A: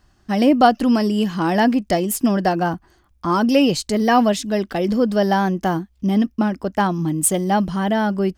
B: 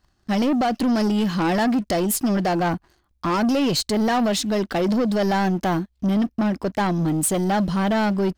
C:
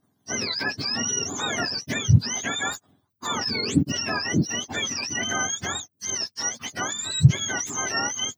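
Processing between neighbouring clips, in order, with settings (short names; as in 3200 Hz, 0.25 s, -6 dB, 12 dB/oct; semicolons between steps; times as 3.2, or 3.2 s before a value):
bell 4100 Hz +5.5 dB 0.26 oct; limiter -11 dBFS, peak gain reduction 9.5 dB; sample leveller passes 2; gain -4.5 dB
spectrum mirrored in octaves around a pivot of 1100 Hz; gain -2.5 dB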